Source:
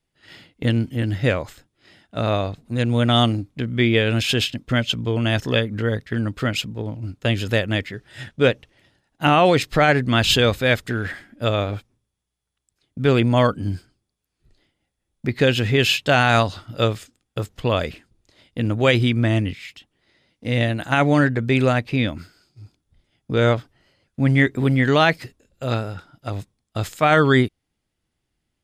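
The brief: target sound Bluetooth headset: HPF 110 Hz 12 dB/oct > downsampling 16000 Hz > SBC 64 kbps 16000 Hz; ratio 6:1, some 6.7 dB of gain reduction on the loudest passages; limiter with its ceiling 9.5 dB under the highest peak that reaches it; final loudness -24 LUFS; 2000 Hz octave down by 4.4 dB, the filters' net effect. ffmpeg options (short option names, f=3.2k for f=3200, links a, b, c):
-af "equalizer=f=2k:t=o:g=-6,acompressor=threshold=-19dB:ratio=6,alimiter=limit=-18dB:level=0:latency=1,highpass=110,aresample=16000,aresample=44100,volume=6dB" -ar 16000 -c:a sbc -b:a 64k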